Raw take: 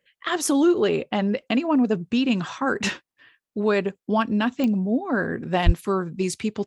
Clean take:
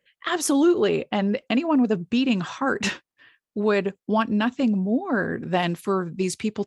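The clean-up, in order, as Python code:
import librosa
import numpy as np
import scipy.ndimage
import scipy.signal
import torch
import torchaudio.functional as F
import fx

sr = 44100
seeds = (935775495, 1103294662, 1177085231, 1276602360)

y = fx.fix_declick_ar(x, sr, threshold=10.0)
y = fx.highpass(y, sr, hz=140.0, slope=24, at=(5.65, 5.77), fade=0.02)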